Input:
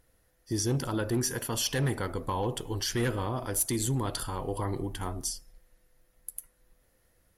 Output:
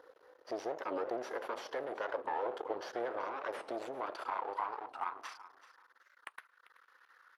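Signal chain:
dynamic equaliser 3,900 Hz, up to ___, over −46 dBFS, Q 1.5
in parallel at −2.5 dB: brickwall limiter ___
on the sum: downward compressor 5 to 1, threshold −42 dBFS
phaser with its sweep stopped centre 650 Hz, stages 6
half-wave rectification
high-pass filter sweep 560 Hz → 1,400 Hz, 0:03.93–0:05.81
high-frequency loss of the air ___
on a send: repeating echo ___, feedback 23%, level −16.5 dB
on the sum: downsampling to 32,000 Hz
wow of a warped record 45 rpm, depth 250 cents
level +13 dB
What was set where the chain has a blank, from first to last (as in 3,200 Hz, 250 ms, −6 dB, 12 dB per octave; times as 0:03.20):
−3 dB, −26.5 dBFS, 290 metres, 380 ms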